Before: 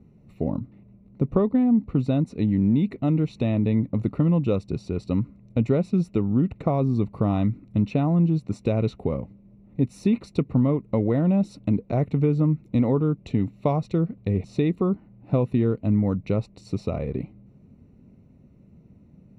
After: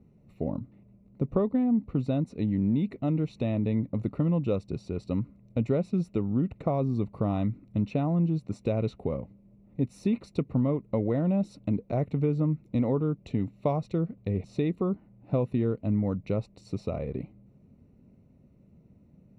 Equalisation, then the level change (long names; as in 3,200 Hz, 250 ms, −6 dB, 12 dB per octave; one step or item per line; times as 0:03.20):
parametric band 580 Hz +3 dB 0.63 octaves
−5.5 dB